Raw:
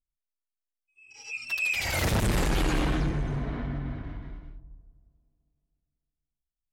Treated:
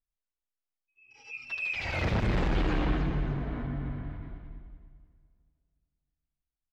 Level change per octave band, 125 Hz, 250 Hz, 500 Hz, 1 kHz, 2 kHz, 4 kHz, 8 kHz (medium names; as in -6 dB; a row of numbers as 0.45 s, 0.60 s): -1.5 dB, -1.5 dB, -2.0 dB, -2.5 dB, -4.0 dB, -7.0 dB, under -15 dB